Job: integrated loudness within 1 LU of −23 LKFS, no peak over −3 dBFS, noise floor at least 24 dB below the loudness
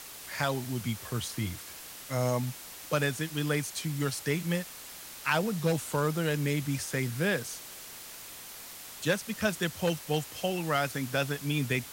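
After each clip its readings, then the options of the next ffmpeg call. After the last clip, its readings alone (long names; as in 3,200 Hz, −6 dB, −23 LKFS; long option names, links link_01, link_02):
background noise floor −46 dBFS; target noise floor −56 dBFS; integrated loudness −31.5 LKFS; sample peak −12.5 dBFS; target loudness −23.0 LKFS
→ -af "afftdn=noise_reduction=10:noise_floor=-46"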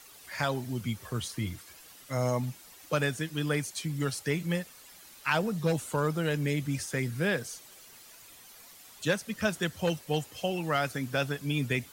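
background noise floor −53 dBFS; target noise floor −56 dBFS
→ -af "afftdn=noise_reduction=6:noise_floor=-53"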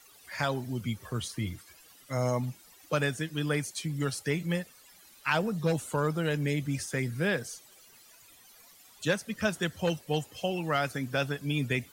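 background noise floor −57 dBFS; integrated loudness −31.5 LKFS; sample peak −13.0 dBFS; target loudness −23.0 LKFS
→ -af "volume=8.5dB"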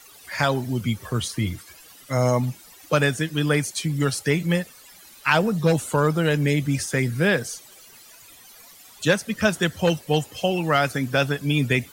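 integrated loudness −23.0 LKFS; sample peak −4.5 dBFS; background noise floor −48 dBFS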